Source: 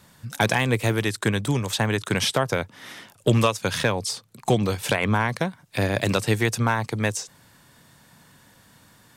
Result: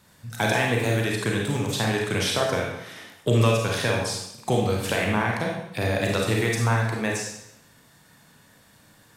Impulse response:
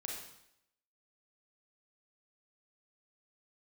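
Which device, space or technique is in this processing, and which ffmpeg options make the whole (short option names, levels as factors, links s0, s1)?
bathroom: -filter_complex "[1:a]atrim=start_sample=2205[s0];[0:a][s0]afir=irnorm=-1:irlink=0"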